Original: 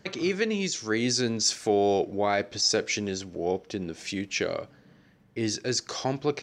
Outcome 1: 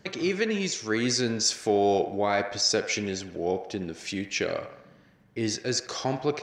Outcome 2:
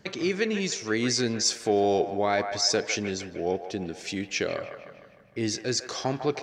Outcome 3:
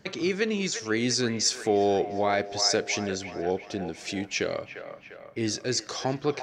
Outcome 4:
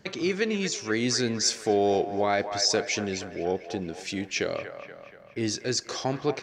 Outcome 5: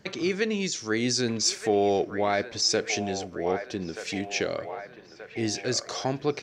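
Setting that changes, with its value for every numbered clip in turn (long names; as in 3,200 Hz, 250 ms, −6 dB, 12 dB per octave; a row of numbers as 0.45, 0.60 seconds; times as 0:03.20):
delay with a band-pass on its return, delay time: 71, 153, 349, 238, 1,229 milliseconds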